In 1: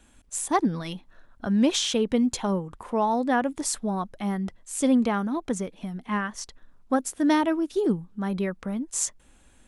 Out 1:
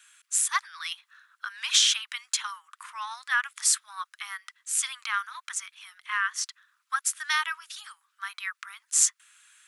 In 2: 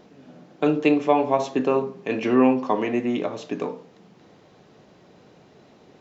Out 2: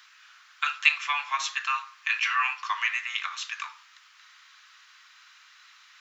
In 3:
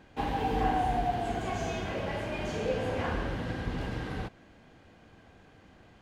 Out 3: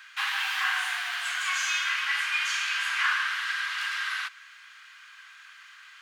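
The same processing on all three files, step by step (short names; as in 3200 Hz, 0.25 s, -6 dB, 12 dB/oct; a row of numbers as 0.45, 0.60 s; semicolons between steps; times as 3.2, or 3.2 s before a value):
steep high-pass 1200 Hz 48 dB/oct; match loudness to -27 LUFS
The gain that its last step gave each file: +6.5, +8.5, +15.0 dB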